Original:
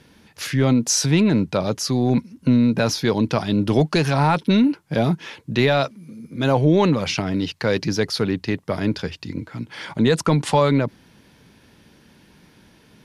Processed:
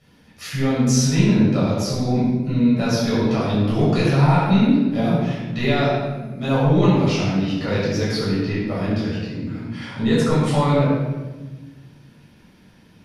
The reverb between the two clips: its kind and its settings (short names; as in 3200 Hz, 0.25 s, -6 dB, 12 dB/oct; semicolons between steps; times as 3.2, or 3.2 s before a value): shoebox room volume 830 m³, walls mixed, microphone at 6.4 m; gain -13 dB